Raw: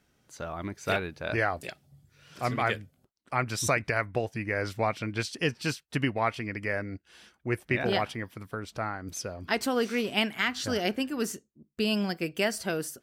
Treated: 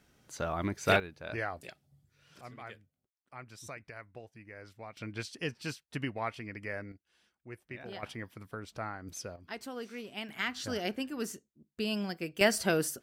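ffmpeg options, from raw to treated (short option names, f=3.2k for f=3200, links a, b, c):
-af "asetnsamples=n=441:p=0,asendcmd='1 volume volume -8.5dB;2.41 volume volume -19dB;4.97 volume volume -8dB;6.92 volume volume -17dB;8.03 volume volume -6dB;9.36 volume volume -14dB;10.29 volume volume -6dB;12.41 volume volume 2.5dB',volume=2.5dB"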